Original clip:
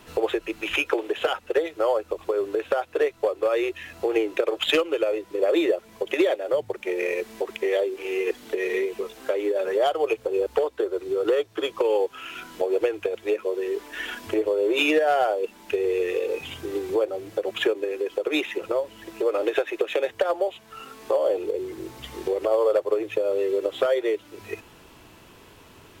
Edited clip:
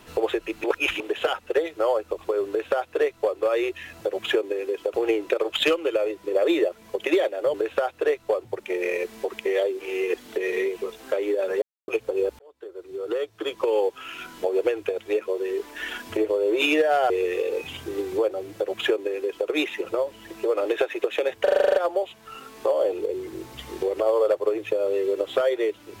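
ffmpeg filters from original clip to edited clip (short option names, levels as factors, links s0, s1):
-filter_complex "[0:a]asplit=19[s0][s1][s2][s3][s4][s5][s6][s7][s8][s9][s10][s11][s12][s13][s14][s15][s16][s17][s18];[s0]atrim=end=0.642[s19];[s1]atrim=start=0.638:end=1.002,asetpts=PTS-STARTPTS,areverse[s20];[s2]atrim=start=0.998:end=4.012[s21];[s3]atrim=start=17.328:end=18.262[s22];[s4]atrim=start=4.008:end=6.612[s23];[s5]atrim=start=2.478:end=3.382[s24];[s6]atrim=start=6.608:end=9.79,asetpts=PTS-STARTPTS,afade=t=out:st=3.178:d=0.004:c=hsin[s25];[s7]atrim=start=9.79:end=10.05,asetpts=PTS-STARTPTS,volume=0[s26];[s8]atrim=start=10.05:end=10.56,asetpts=PTS-STARTPTS,afade=t=in:d=0.004:c=hsin,afade=t=out:st=0.506:d=0.004:c=hsin[s27];[s9]atrim=start=10.56:end=15.272,asetpts=PTS-STARTPTS,afade=t=in:d=1.39[s28];[s10]atrim=start=15.868:end=20.242[s29];[s11]atrim=start=20.198:end=20.242[s30];[s12]atrim=start=20.198:end=20.242[s31];[s13]atrim=start=20.198:end=20.242[s32];[s14]atrim=start=20.198:end=20.242[s33];[s15]atrim=start=20.198:end=20.242[s34];[s16]atrim=start=20.198:end=20.242[s35];[s17]atrim=start=20.198:end=20.242[s36];[s18]atrim=start=20.198[s37];[s19][s20]acrossfade=d=0.004:c1=hsin:c2=hsin[s38];[s38][s21]acrossfade=d=0.004:c1=hsin:c2=hsin[s39];[s39][s22]acrossfade=d=0.004:c1=hsin:c2=hsin[s40];[s40][s23]acrossfade=d=0.004:c1=hsin:c2=hsin[s41];[s41][s24]acrossfade=d=0.004:c1=hsin:c2=hsin[s42];[s25][s26][s27][s28]concat=n=4:v=0:a=1[s43];[s42][s43]acrossfade=d=0.004:c1=hsin:c2=hsin[s44];[s44][s29]acrossfade=d=0.004:c1=hsin:c2=hsin[s45];[s45][s30]acrossfade=d=0.004:c1=hsin:c2=hsin[s46];[s46][s31]acrossfade=d=0.004:c1=hsin:c2=hsin[s47];[s47][s32]acrossfade=d=0.004:c1=hsin:c2=hsin[s48];[s48][s33]acrossfade=d=0.004:c1=hsin:c2=hsin[s49];[s49][s34]acrossfade=d=0.004:c1=hsin:c2=hsin[s50];[s50][s35]acrossfade=d=0.004:c1=hsin:c2=hsin[s51];[s51][s36]acrossfade=d=0.004:c1=hsin:c2=hsin[s52];[s52][s37]acrossfade=d=0.004:c1=hsin:c2=hsin"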